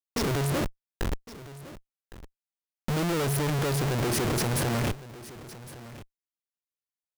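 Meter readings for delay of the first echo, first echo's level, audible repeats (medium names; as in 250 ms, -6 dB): 1110 ms, -17.0 dB, 1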